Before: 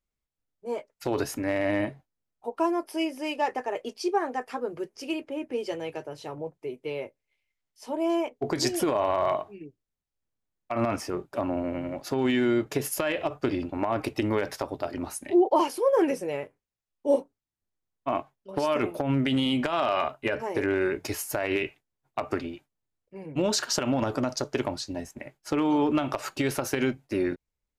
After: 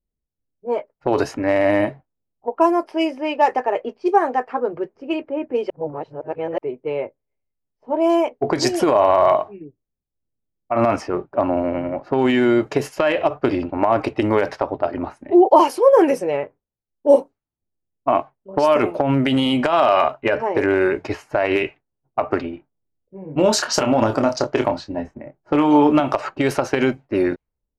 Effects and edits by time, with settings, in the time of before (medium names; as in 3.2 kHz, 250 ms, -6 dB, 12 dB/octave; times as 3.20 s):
5.70–6.58 s: reverse
22.50–26.00 s: doubling 27 ms -7 dB
whole clip: band-stop 3.5 kHz, Q 18; level-controlled noise filter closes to 470 Hz, open at -22 dBFS; dynamic bell 750 Hz, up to +6 dB, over -39 dBFS, Q 0.72; trim +5.5 dB